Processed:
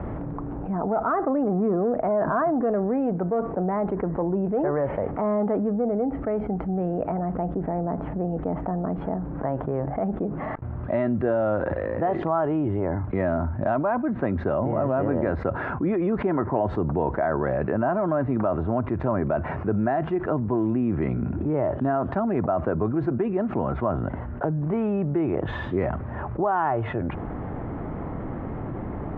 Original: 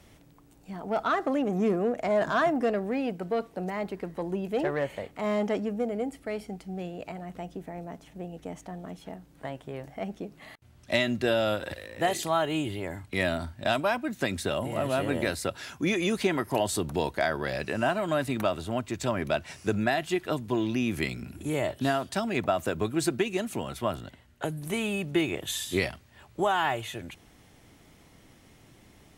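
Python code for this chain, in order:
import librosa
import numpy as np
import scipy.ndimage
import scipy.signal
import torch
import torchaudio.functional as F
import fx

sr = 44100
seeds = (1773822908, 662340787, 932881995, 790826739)

y = scipy.signal.sosfilt(scipy.signal.butter(4, 1300.0, 'lowpass', fs=sr, output='sos'), x)
y = fx.env_flatten(y, sr, amount_pct=70)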